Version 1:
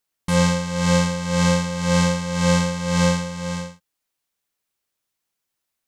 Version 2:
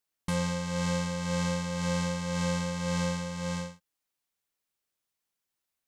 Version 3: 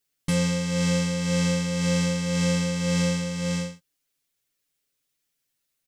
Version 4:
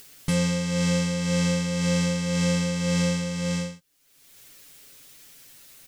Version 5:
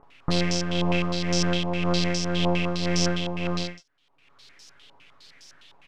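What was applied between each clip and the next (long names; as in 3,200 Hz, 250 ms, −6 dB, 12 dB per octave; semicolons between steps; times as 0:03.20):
downward compressor 5 to 1, threshold −22 dBFS, peak gain reduction 8 dB; level −5.5 dB
parametric band 930 Hz −9 dB 1.2 octaves; comb filter 7.2 ms, depth 89%; level +5 dB
upward compression, threshold −27 dBFS
multiband delay without the direct sound lows, highs 30 ms, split 1,700 Hz; half-wave rectification; low-pass on a step sequencer 9.8 Hz 940–5,500 Hz; level +3 dB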